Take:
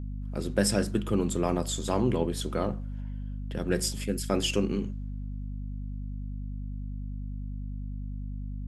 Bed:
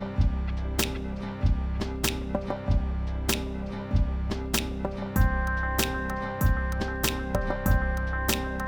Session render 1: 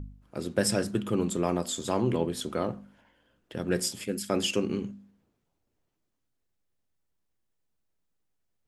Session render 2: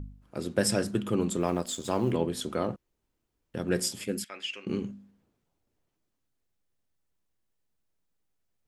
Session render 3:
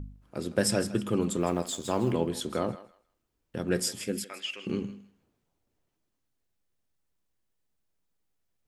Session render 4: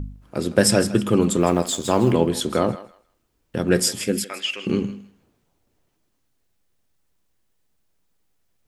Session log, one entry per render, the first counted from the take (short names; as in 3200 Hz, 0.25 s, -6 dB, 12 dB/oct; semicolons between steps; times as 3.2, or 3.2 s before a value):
de-hum 50 Hz, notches 5
1.4–2.12 G.711 law mismatch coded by A; 2.76–3.54 room tone; 4.24–4.67 band-pass 2200 Hz, Q 2.2
thinning echo 0.159 s, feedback 21%, high-pass 690 Hz, level -14 dB
gain +9.5 dB